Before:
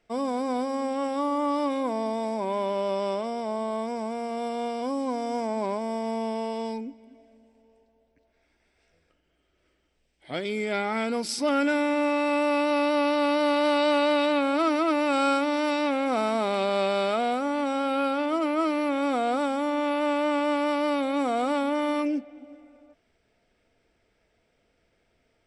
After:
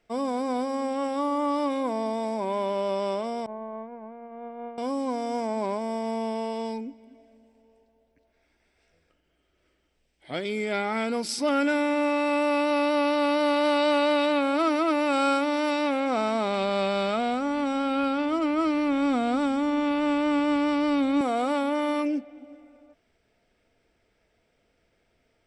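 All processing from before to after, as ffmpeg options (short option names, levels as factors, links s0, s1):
-filter_complex "[0:a]asettb=1/sr,asplit=3[s0][s1][s2];[s0]atrim=end=3.464[s3];[s1]atrim=start=3.46:end=4.78,asetpts=PTS-STARTPTS,afade=t=in:d=0.004:c=qsin,afade=t=out:st=1.316:d=0.004:c=qsin,agate=range=0.0224:threshold=0.0631:ratio=3:release=100:detection=peak,lowpass=f=2000:w=0.5412,lowpass=f=2000:w=1.3066[s4];[s2]atrim=start=4.776[s5];[s3][s4]acrossfade=d=0.004:c1=hsin:c2=qsin[s6];[s6][s5]acrossfade=d=0.004:c1=qsin:c2=hsin,asettb=1/sr,asplit=3[s7][s8][s9];[s7]atrim=end=16.004[s10];[s8]atrim=start=16:end=21.21,asetpts=PTS-STARTPTS,afade=t=in:d=0.004:c=qsin,afade=t=out:st=5.206:d=0.004:c=qsin,lowpass=f=8600:w=0.5412,lowpass=f=8600:w=1.3066,asubboost=boost=6.5:cutoff=210[s11];[s9]atrim=start=21.206[s12];[s10][s11]acrossfade=d=0.004:c1=hsin:c2=qsin[s13];[s13][s12]acrossfade=d=0.004:c1=qsin:c2=hsin"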